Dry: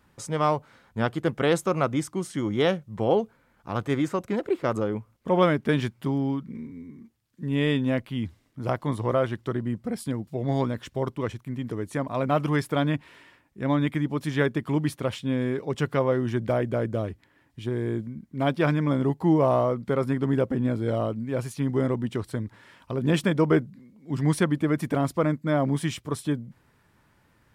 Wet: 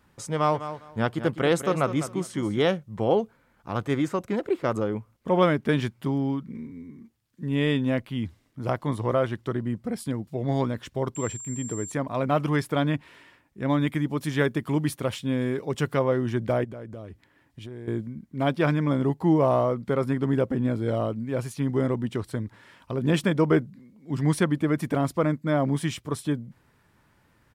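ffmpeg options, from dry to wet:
ffmpeg -i in.wav -filter_complex "[0:a]asplit=3[link_01][link_02][link_03];[link_01]afade=type=out:start_time=0.53:duration=0.02[link_04];[link_02]aecho=1:1:203|406|609:0.266|0.0532|0.0106,afade=type=in:start_time=0.53:duration=0.02,afade=type=out:start_time=2.6:duration=0.02[link_05];[link_03]afade=type=in:start_time=2.6:duration=0.02[link_06];[link_04][link_05][link_06]amix=inputs=3:normalize=0,asettb=1/sr,asplit=3[link_07][link_08][link_09];[link_07]atrim=end=11.154[link_10];[link_08]atrim=start=11.15:end=11.92,asetpts=PTS-STARTPTS,afade=type=in:duration=0.004:curve=qsin,afade=type=out:start_time=0.766:duration=0.004:curve=qsin,aeval=exprs='val(0)+0.0158*sin(2*PI*7400*n/s)':channel_layout=same[link_11];[link_09]atrim=start=11.916[link_12];[link_10][link_11]acrossfade=duration=0.004:curve1=hsin:curve2=qsin[link_13];[link_13][link_12]acrossfade=duration=0.004:curve1=qsin:curve2=hsin,asettb=1/sr,asplit=3[link_14][link_15][link_16];[link_14]atrim=end=13.694[link_17];[link_15]atrim=start=13.69:end=15.99,asetpts=PTS-STARTPTS,afade=type=in:duration=0.004:curve=qsin,afade=type=out:start_time=2.296:duration=0.004:curve=qsin,highshelf=frequency=7500:gain=7.5[link_18];[link_16]atrim=start=15.986[link_19];[link_17][link_18]acrossfade=duration=0.004:curve1=hsin:curve2=qsin[link_20];[link_20][link_19]acrossfade=duration=0.004:curve1=qsin:curve2=hsin,asettb=1/sr,asplit=3[link_21][link_22][link_23];[link_21]atrim=end=16.644[link_24];[link_22]atrim=start=16.64:end=17.88,asetpts=PTS-STARTPTS,afade=type=in:duration=0.004:curve=qsin,afade=type=out:start_time=1.236:duration=0.004:curve=qsin,acompressor=threshold=-37dB:ratio=4:attack=3.2:release=140:knee=1:detection=peak[link_25];[link_23]atrim=start=17.876[link_26];[link_24][link_25]acrossfade=duration=0.004:curve1=hsin:curve2=qsin[link_27];[link_27][link_26]acrossfade=duration=0.004:curve1=qsin:curve2=hsin" out.wav

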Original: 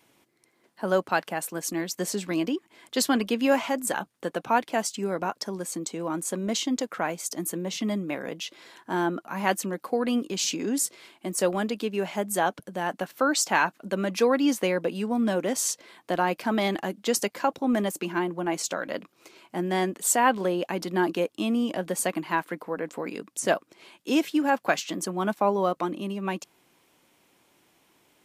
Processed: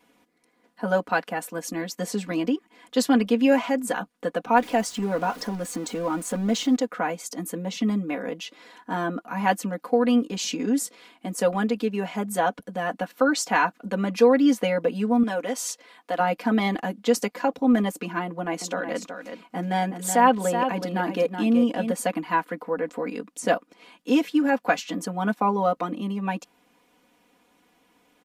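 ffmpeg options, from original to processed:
ffmpeg -i in.wav -filter_complex "[0:a]asettb=1/sr,asplit=3[link_01][link_02][link_03];[link_01]atrim=end=4.574[link_04];[link_02]atrim=start=4.57:end=6.76,asetpts=PTS-STARTPTS,afade=type=in:duration=0.004:curve=qsin,afade=type=out:start_time=2.186:duration=0.004:curve=qsin,aeval=exprs='val(0)+0.5*0.015*sgn(val(0))':channel_layout=same[link_05];[link_03]atrim=start=6.756[link_06];[link_04][link_05]acrossfade=duration=0.004:curve1=hsin:curve2=qsin[link_07];[link_07][link_06]acrossfade=duration=0.004:curve1=qsin:curve2=hsin,asettb=1/sr,asplit=3[link_08][link_09][link_10];[link_08]atrim=end=15.234[link_11];[link_09]atrim=start=15.23:end=16.2,asetpts=PTS-STARTPTS,afade=type=in:duration=0.004:curve=qsin,afade=type=out:start_time=0.966:duration=0.004:curve=qsin,highpass=frequency=540:poles=1[link_12];[link_10]atrim=start=16.196[link_13];[link_11][link_12]acrossfade=duration=0.004:curve1=hsin:curve2=qsin[link_14];[link_14][link_13]acrossfade=duration=0.004:curve1=qsin:curve2=hsin,asettb=1/sr,asplit=3[link_15][link_16][link_17];[link_15]atrim=end=18.244[link_18];[link_16]atrim=start=18.24:end=21.92,asetpts=PTS-STARTPTS,afade=type=in:duration=0.004:curve=qsin,afade=type=out:start_time=3.676:duration=0.004:curve=qsin,aecho=1:1:373:0.398,atrim=end_sample=162288[link_19];[link_17]atrim=start=21.916[link_20];[link_18][link_19]acrossfade=duration=0.004:curve1=hsin:curve2=qsin[link_21];[link_21][link_20]acrossfade=duration=0.004:curve1=qsin:curve2=hsin,highshelf=frequency=3400:gain=-8,aecho=1:1:4.1:0.95" out.wav

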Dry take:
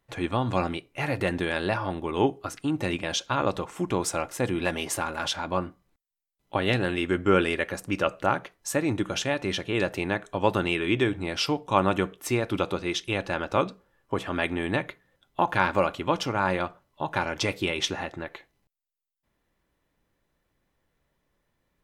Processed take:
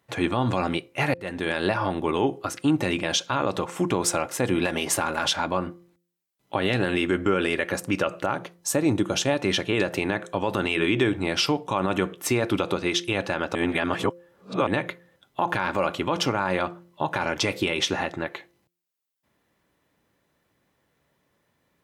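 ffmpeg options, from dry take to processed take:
ffmpeg -i in.wav -filter_complex "[0:a]asettb=1/sr,asplit=3[link_01][link_02][link_03];[link_01]atrim=end=8.354[link_04];[link_02]atrim=start=8.35:end=9.42,asetpts=PTS-STARTPTS,afade=type=in:duration=0.004:curve=qsin,afade=type=out:start_time=1.066:duration=0.004:curve=qsin,equalizer=frequency=1900:width_type=o:width=1.4:gain=-6[link_05];[link_03]atrim=start=9.416[link_06];[link_04][link_05]acrossfade=duration=0.004:curve1=hsin:curve2=qsin[link_07];[link_07][link_06]acrossfade=duration=0.004:curve1=qsin:curve2=hsin,asplit=4[link_08][link_09][link_10][link_11];[link_08]atrim=end=1.14,asetpts=PTS-STARTPTS,afade=type=out:start_time=1.136:duration=0.004:curve=hsin[link_12];[link_09]atrim=start=1.14:end=13.552,asetpts=PTS-STARTPTS,afade=type=in:duration=0.52[link_13];[link_10]atrim=start=13.548:end=14.672,asetpts=PTS-STARTPTS,areverse[link_14];[link_11]atrim=start=14.668[link_15];[link_12][link_13]concat=n=2:v=0:a=1[link_16];[link_16][link_14]acrossfade=duration=0.004:curve1=hsin:curve2=hsin[link_17];[link_17][link_15]acrossfade=duration=0.004:curve1=hsin:curve2=hsin,highpass=100,bandreject=frequency=173.8:width_type=h:width=4,bandreject=frequency=347.6:width_type=h:width=4,bandreject=frequency=521.4:width_type=h:width=4,alimiter=limit=-17.5dB:level=0:latency=1:release=88,volume=6dB" out.wav

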